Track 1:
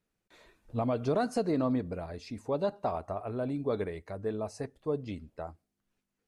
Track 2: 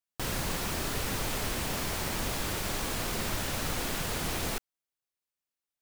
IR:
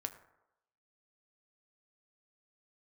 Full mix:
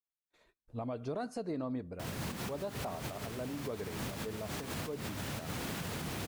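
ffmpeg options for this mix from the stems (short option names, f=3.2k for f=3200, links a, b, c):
-filter_complex "[0:a]agate=range=-24dB:threshold=-58dB:ratio=16:detection=peak,volume=-7.5dB,asplit=2[a][b];[1:a]highpass=120,bass=f=250:g=9,treble=f=4k:g=-3,adelay=1800,volume=-3dB[c];[b]apad=whole_len=336001[d];[c][d]sidechaincompress=threshold=-50dB:ratio=6:attack=12:release=106[e];[a][e]amix=inputs=2:normalize=0,alimiter=level_in=5dB:limit=-24dB:level=0:latency=1:release=117,volume=-5dB"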